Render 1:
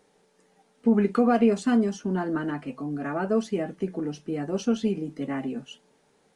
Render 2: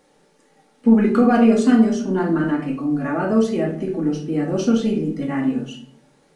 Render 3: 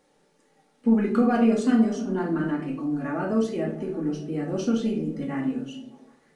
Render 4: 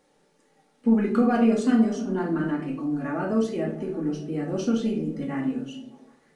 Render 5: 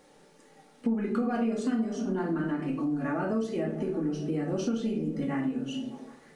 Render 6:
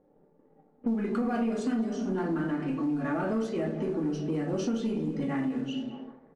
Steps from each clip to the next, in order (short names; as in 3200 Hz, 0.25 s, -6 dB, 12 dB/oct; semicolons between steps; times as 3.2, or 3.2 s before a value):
shoebox room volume 680 m³, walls furnished, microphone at 2.3 m; gain +3.5 dB
delay with a stepping band-pass 0.152 s, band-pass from 170 Hz, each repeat 0.7 oct, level -11 dB; gain -6.5 dB
nothing audible
compressor 4:1, threshold -35 dBFS, peak gain reduction 17 dB; gain +6.5 dB
sample leveller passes 1; low-pass opened by the level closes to 540 Hz, open at -22.5 dBFS; speakerphone echo 0.21 s, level -13 dB; gain -3 dB